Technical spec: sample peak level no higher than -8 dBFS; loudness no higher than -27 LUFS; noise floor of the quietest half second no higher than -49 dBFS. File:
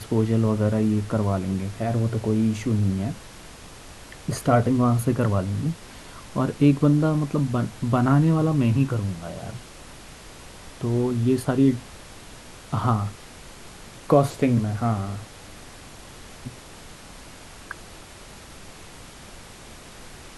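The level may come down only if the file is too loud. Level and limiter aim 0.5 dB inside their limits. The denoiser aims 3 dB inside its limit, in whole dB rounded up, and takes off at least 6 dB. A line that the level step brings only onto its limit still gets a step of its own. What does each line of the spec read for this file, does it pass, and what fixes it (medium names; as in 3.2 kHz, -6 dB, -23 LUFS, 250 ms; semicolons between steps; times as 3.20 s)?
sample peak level -4.0 dBFS: fail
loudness -23.0 LUFS: fail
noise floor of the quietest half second -43 dBFS: fail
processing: noise reduction 6 dB, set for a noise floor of -43 dBFS; trim -4.5 dB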